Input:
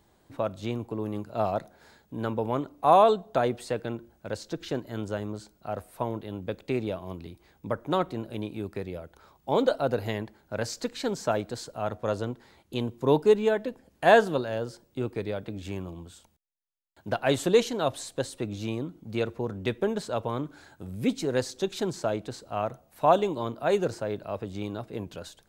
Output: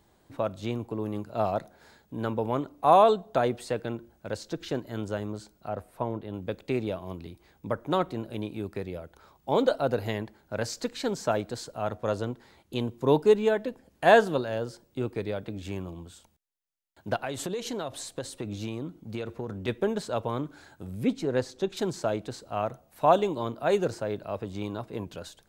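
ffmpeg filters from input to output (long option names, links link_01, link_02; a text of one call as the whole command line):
ffmpeg -i in.wav -filter_complex "[0:a]asettb=1/sr,asplit=3[link_01][link_02][link_03];[link_01]atrim=end=5.694[link_04];[link_02]atrim=start=5.69:end=6.34,asetpts=PTS-STARTPTS,afade=type=in:duration=0.004:curve=qsin,afade=type=out:start_time=0.646:duration=0.004:curve=qsin,highshelf=frequency=2700:gain=-8.5[link_05];[link_03]atrim=start=6.336[link_06];[link_04][link_05]acrossfade=duration=0.004:curve1=hsin:curve2=qsin[link_07];[link_07][link_06]acrossfade=duration=0.004:curve1=qsin:curve2=hsin,asplit=3[link_08][link_09][link_10];[link_08]afade=type=out:start_time=17.16:duration=0.02[link_11];[link_09]acompressor=threshold=-28dB:ratio=16:attack=3.2:release=140:knee=1:detection=peak,afade=type=in:start_time=17.16:duration=0.02,afade=type=out:start_time=19.67:duration=0.02[link_12];[link_10]afade=type=in:start_time=19.67:duration=0.02[link_13];[link_11][link_12][link_13]amix=inputs=3:normalize=0,asettb=1/sr,asplit=3[link_14][link_15][link_16];[link_14]atrim=end=21.034[link_17];[link_15]atrim=start=21.03:end=21.77,asetpts=PTS-STARTPTS,afade=type=in:duration=0.004:curve=qsin,afade=type=out:start_time=0.736:duration=0.004:curve=qsin,highshelf=frequency=3700:gain=-10[link_18];[link_16]atrim=start=21.766[link_19];[link_17][link_18]acrossfade=duration=0.004:curve1=hsin:curve2=qsin[link_20];[link_20][link_19]acrossfade=duration=0.004:curve1=qsin:curve2=hsin,asettb=1/sr,asplit=3[link_21][link_22][link_23];[link_21]atrim=end=24.444[link_24];[link_22]atrim=start=24.44:end=25.05,asetpts=PTS-STARTPTS,afade=type=in:duration=0.004:curve=qsin,afade=type=out:start_time=0.606:duration=0.004:curve=qsin,equalizer=frequency=1000:width_type=o:width=0.29:gain=6.5[link_25];[link_23]atrim=start=25.046[link_26];[link_24][link_25]acrossfade=duration=0.004:curve1=hsin:curve2=qsin[link_27];[link_27][link_26]acrossfade=duration=0.004:curve1=qsin:curve2=hsin" out.wav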